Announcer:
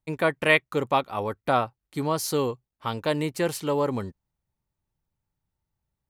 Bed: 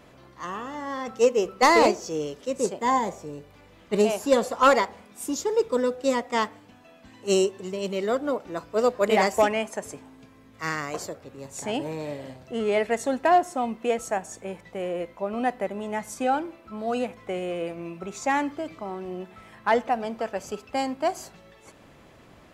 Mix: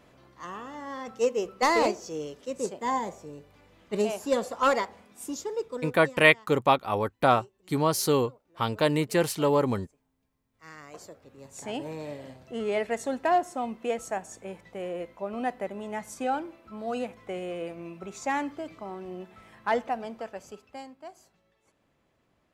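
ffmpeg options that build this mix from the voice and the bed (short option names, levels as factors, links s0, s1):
-filter_complex "[0:a]adelay=5750,volume=1.19[s0];[1:a]volume=8.91,afade=t=out:st=5.26:d=0.96:silence=0.0668344,afade=t=in:st=10.48:d=1.43:silence=0.0595662,afade=t=out:st=19.79:d=1.16:silence=0.188365[s1];[s0][s1]amix=inputs=2:normalize=0"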